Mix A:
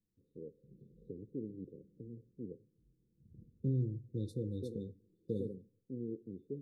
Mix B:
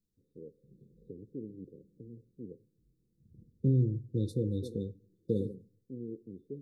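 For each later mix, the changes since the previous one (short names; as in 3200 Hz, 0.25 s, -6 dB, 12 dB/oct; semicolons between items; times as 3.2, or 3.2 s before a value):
second voice +7.0 dB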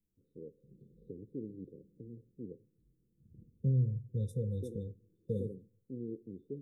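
second voice: add fixed phaser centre 1200 Hz, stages 6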